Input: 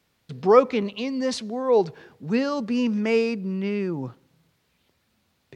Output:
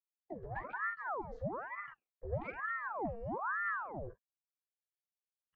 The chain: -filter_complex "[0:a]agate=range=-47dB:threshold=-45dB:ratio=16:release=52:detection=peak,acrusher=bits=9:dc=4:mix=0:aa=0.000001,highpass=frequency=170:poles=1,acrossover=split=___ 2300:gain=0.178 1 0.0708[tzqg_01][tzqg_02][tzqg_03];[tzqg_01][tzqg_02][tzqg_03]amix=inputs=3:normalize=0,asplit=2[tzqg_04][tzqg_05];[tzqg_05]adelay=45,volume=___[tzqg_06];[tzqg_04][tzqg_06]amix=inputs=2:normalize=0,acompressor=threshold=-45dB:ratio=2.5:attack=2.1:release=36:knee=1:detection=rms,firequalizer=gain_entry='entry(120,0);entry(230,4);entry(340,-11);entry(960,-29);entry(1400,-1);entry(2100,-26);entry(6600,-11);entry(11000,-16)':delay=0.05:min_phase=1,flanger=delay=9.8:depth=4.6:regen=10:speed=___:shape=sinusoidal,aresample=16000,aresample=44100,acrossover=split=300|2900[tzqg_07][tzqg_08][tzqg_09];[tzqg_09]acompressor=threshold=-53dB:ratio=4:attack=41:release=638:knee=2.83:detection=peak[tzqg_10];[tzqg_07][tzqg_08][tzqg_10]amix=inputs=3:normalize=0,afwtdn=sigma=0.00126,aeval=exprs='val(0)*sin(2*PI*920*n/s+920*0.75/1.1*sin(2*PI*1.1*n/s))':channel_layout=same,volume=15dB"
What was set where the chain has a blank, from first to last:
440, -13dB, 1.1